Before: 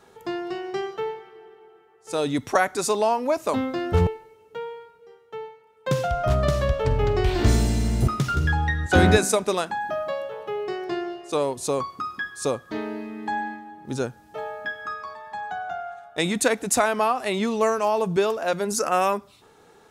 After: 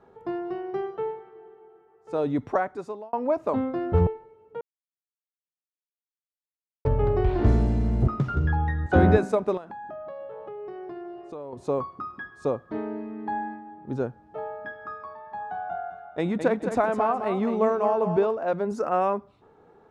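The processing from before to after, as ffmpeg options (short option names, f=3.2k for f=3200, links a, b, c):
-filter_complex "[0:a]asettb=1/sr,asplit=3[a][b][c];[a]atrim=end=9.574[d];[b]atrim=start=9.57:end=11.53,asetpts=PTS-STARTPTS,afade=t=in:d=0.004:c=qsin,afade=t=out:st=1.956:d=0.004:c=qsin,acompressor=threshold=-34dB:ratio=5:attack=3.2:release=140:knee=1:detection=peak[e];[c]atrim=start=11.526[f];[d][e]acrossfade=d=0.004:c1=hsin:c2=qsin[g];[g][f]acrossfade=d=0.004:c1=qsin:c2=hsin,asettb=1/sr,asplit=3[h][i][j];[h]atrim=end=15.194[k];[i]atrim=start=15.19:end=18.27,asetpts=PTS-STARTPTS,afade=t=in:d=0.004:c=qsin,afade=t=out:st=3.076:d=0.004:c=qsin,aecho=1:1:211|422|633|844:0.398|0.119|0.0358|0.0107,atrim=end_sample=135828[l];[j]atrim=start=18.266[m];[k][l]acrossfade=d=0.004:c1=hsin:c2=qsin[n];[n][m]acrossfade=d=0.004:c1=qsin:c2=hsin,asplit=4[o][p][q][r];[o]atrim=end=3.13,asetpts=PTS-STARTPTS,afade=t=out:st=2.43:d=0.7[s];[p]atrim=start=3.13:end=4.61,asetpts=PTS-STARTPTS,afade=t=in:d=0.004:c=hsin,afade=t=out:st=1.476:d=0.004:c=hsin[t];[q]atrim=start=4.61:end=6.85,asetpts=PTS-STARTPTS,volume=0[u];[r]atrim=start=6.85,asetpts=PTS-STARTPTS,afade=t=in:d=0.004:c=hsin[v];[s][t][u][v]concat=n=4:v=0:a=1,lowpass=1k,aemphasis=mode=production:type=75fm"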